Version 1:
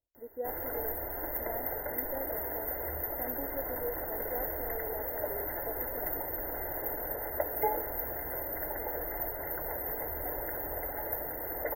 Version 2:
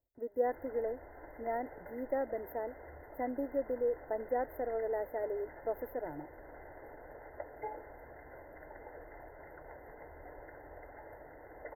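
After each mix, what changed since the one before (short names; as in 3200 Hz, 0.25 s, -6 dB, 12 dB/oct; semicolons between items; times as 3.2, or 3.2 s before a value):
speech +6.0 dB; background: add ladder low-pass 6100 Hz, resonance 70%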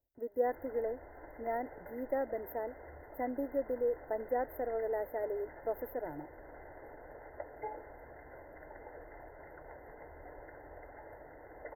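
background: add high shelf 4500 Hz -8 dB; master: add high shelf 4300 Hz +4.5 dB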